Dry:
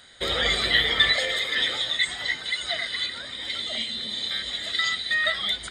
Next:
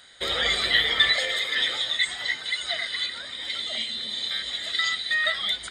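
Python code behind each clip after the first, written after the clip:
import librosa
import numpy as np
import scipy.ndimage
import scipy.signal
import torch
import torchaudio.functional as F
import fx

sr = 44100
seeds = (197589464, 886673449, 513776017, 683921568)

y = fx.low_shelf(x, sr, hz=430.0, db=-6.5)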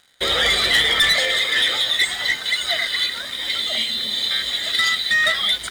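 y = fx.leveller(x, sr, passes=3)
y = y * 10.0 ** (-3.5 / 20.0)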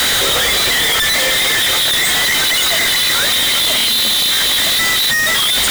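y = np.sign(x) * np.sqrt(np.mean(np.square(x)))
y = y * 10.0 ** (6.5 / 20.0)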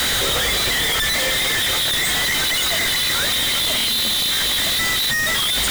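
y = fx.low_shelf(x, sr, hz=190.0, db=7.5)
y = y * 10.0 ** (-5.5 / 20.0)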